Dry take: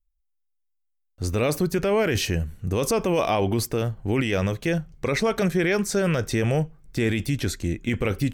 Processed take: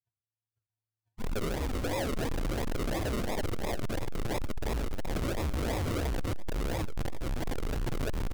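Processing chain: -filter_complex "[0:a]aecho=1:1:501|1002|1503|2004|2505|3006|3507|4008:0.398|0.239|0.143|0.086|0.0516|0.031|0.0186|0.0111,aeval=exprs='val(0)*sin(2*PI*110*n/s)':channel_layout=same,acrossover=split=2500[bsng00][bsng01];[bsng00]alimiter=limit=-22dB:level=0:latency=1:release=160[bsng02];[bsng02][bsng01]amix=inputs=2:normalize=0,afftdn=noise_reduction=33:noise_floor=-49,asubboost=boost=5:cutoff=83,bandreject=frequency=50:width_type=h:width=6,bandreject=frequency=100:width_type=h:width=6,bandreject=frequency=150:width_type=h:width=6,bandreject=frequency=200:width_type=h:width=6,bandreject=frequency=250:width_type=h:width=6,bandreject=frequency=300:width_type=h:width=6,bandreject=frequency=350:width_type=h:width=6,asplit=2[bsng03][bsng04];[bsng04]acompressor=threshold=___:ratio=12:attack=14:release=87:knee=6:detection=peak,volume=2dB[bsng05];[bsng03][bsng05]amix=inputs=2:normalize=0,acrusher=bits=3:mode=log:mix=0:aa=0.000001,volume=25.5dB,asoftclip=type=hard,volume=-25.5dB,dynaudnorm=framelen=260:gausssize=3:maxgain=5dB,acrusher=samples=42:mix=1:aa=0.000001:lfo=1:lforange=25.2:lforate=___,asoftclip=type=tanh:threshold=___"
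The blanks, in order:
-38dB, 2.9, -28.5dB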